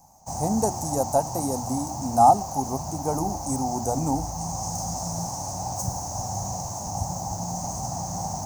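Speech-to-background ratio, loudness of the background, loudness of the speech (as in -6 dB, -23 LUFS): 5.5 dB, -31.0 LUFS, -25.5 LUFS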